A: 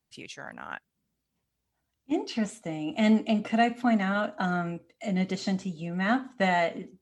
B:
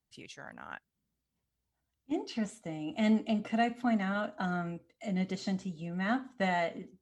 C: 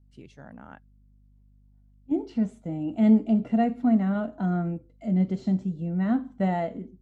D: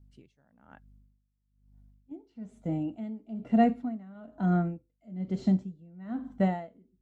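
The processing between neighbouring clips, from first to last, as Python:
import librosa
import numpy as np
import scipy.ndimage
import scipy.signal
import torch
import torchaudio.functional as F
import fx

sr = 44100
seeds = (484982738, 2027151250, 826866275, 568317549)

y1 = fx.low_shelf(x, sr, hz=84.0, db=7.5)
y1 = fx.notch(y1, sr, hz=2500.0, q=20.0)
y1 = F.gain(torch.from_numpy(y1), -6.0).numpy()
y2 = fx.add_hum(y1, sr, base_hz=50, snr_db=33)
y2 = fx.tilt_shelf(y2, sr, db=9.0, hz=860.0)
y2 = fx.hpss(y2, sr, part='percussive', gain_db=-5)
y2 = F.gain(torch.from_numpy(y2), 1.5).numpy()
y3 = y2 * 10.0 ** (-24 * (0.5 - 0.5 * np.cos(2.0 * np.pi * 1.1 * np.arange(len(y2)) / sr)) / 20.0)
y3 = F.gain(torch.from_numpy(y3), 1.5).numpy()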